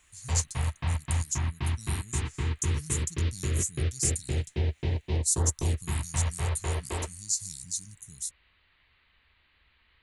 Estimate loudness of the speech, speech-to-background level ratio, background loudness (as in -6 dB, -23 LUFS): -33.5 LUFS, -1.5 dB, -32.0 LUFS